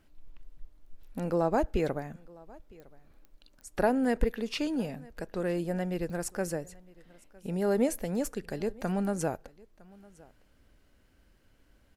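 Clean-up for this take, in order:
clipped peaks rebuilt −14 dBFS
click removal
echo removal 958 ms −24 dB

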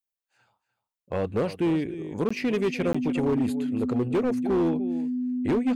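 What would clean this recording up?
clipped peaks rebuilt −19.5 dBFS
notch filter 250 Hz, Q 30
repair the gap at 0:02.29/0:02.93, 15 ms
echo removal 298 ms −14 dB

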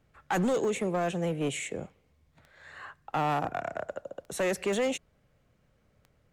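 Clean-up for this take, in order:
clipped peaks rebuilt −23 dBFS
click removal

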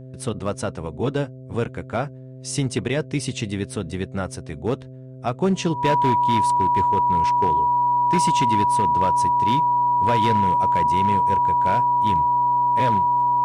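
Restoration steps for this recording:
clipped peaks rebuilt −13 dBFS
hum removal 129.8 Hz, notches 5
notch filter 970 Hz, Q 30

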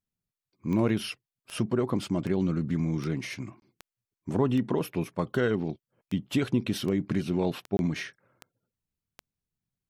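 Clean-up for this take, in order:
click removal
repair the gap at 0:03.60/0:07.77, 21 ms

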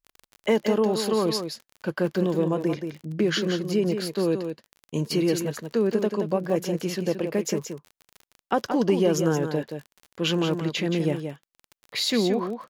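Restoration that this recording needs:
click removal
echo removal 175 ms −7.5 dB

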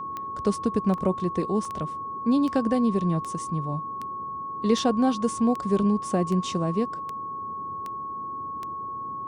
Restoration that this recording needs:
click removal
notch filter 1,100 Hz, Q 30
repair the gap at 0:00.98/0:01.65, 2.2 ms
noise reduction from a noise print 30 dB

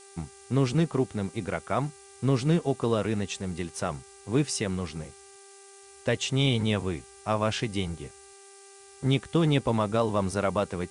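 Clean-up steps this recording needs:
hum removal 394.4 Hz, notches 7
noise reduction from a noise print 21 dB

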